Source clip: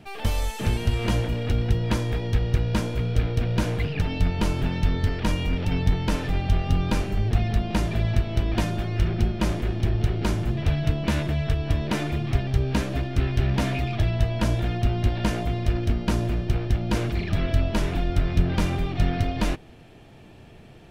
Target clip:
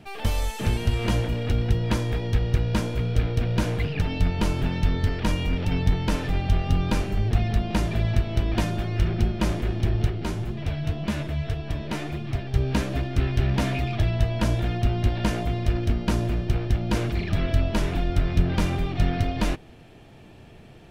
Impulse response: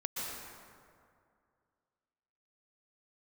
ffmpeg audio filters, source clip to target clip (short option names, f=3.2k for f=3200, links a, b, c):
-filter_complex "[0:a]asplit=3[a][b][c];[a]afade=t=out:st=10.09:d=0.02[d];[b]flanger=delay=4.8:depth=8.2:regen=45:speed=1.8:shape=sinusoidal,afade=t=in:st=10.09:d=0.02,afade=t=out:st=12.53:d=0.02[e];[c]afade=t=in:st=12.53:d=0.02[f];[d][e][f]amix=inputs=3:normalize=0"